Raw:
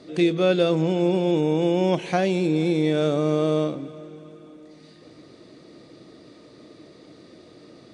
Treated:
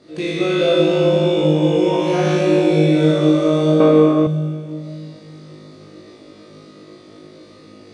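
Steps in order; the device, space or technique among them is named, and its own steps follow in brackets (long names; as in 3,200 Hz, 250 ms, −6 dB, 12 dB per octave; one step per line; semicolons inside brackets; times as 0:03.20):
tunnel (flutter between parallel walls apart 3.3 metres, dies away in 0.75 s; convolution reverb RT60 2.7 s, pre-delay 40 ms, DRR −3.5 dB)
0:03.80–0:04.27: octave-band graphic EQ 125/250/500/1,000/2,000 Hz −9/+9/+5/+10/+9 dB
level −4 dB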